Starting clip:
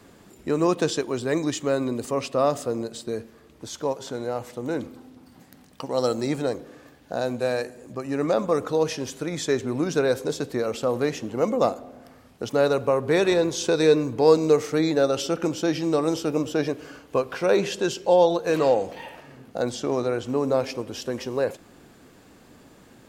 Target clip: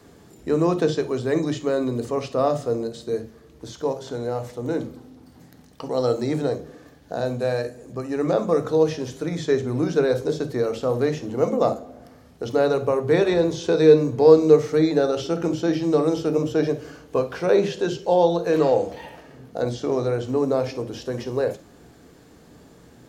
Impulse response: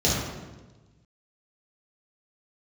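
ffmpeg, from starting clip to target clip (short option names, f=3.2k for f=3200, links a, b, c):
-filter_complex "[0:a]acrossover=split=4200[a][b];[b]acompressor=threshold=-45dB:ratio=4:attack=1:release=60[c];[a][c]amix=inputs=2:normalize=0,asplit=2[d][e];[1:a]atrim=start_sample=2205,atrim=end_sample=3087[f];[e][f]afir=irnorm=-1:irlink=0,volume=-20.5dB[g];[d][g]amix=inputs=2:normalize=0,volume=-1.5dB"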